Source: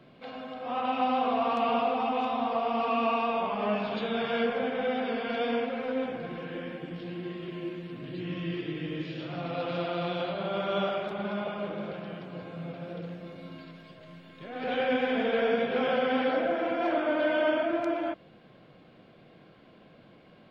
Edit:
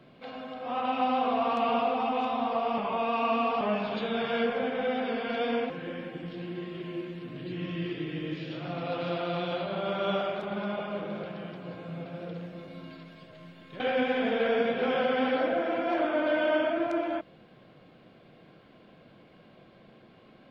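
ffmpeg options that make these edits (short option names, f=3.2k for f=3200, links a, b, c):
-filter_complex "[0:a]asplit=5[a][b][c][d][e];[a]atrim=end=2.782[f];[b]atrim=start=2.778:end=3.612,asetpts=PTS-STARTPTS,areverse[g];[c]atrim=start=3.608:end=5.702[h];[d]atrim=start=6.378:end=14.482[i];[e]atrim=start=14.728[j];[f][g]acrossfade=d=0.004:c1=hsin:c2=hsin[k];[k][h]acrossfade=d=0.004:c1=hsin:c2=hsin[l];[l][i]acrossfade=d=0.004:c1=hsin:c2=hsin[m];[m][j]acrossfade=d=0.004:c1=hsin:c2=hsin"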